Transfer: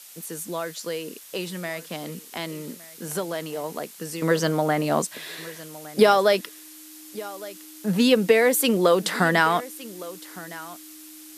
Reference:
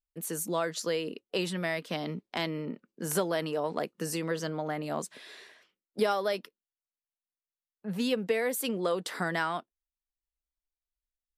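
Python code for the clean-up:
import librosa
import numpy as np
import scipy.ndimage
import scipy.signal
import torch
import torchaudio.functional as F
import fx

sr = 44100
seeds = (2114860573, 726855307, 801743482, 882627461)

y = fx.notch(x, sr, hz=310.0, q=30.0)
y = fx.noise_reduce(y, sr, print_start_s=6.49, print_end_s=6.99, reduce_db=30.0)
y = fx.fix_echo_inverse(y, sr, delay_ms=1162, level_db=-18.5)
y = fx.gain(y, sr, db=fx.steps((0.0, 0.0), (4.22, -11.0)))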